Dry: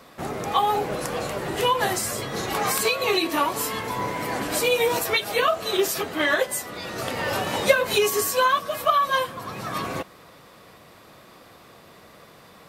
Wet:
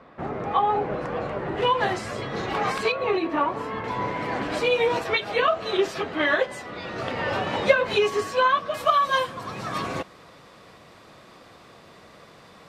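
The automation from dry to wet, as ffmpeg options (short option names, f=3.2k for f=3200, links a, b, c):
-af "asetnsamples=n=441:p=0,asendcmd='1.62 lowpass f 3200;2.92 lowpass f 1700;3.84 lowpass f 3300;8.74 lowpass f 7600',lowpass=1.9k"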